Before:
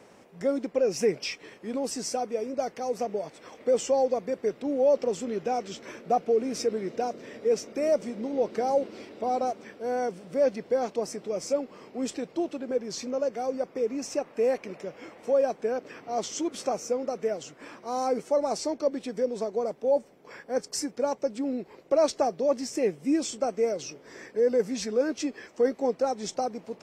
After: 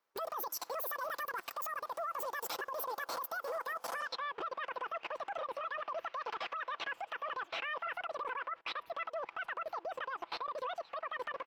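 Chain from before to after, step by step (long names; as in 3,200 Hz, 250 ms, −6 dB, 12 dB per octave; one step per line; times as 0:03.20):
noise gate with hold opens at −43 dBFS
downward compressor 12 to 1, threshold −35 dBFS, peak gain reduction 17 dB
brickwall limiter −34 dBFS, peak gain reduction 10 dB
low-pass filter sweep 8,200 Hz → 1,200 Hz, 0:09.02–0:09.82
output level in coarse steps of 23 dB
double-tracking delay 14 ms −11.5 dB
wrong playback speed 33 rpm record played at 78 rpm
level +7.5 dB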